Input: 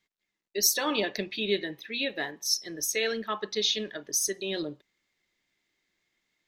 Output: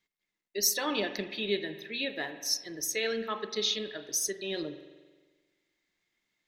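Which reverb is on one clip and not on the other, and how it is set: spring tank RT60 1.4 s, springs 44 ms, chirp 40 ms, DRR 10.5 dB; trim -3 dB

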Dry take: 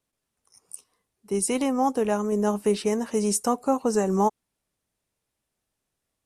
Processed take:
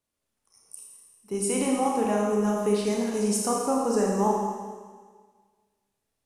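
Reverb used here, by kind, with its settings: Schroeder reverb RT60 1.6 s, combs from 27 ms, DRR -2 dB; trim -4.5 dB

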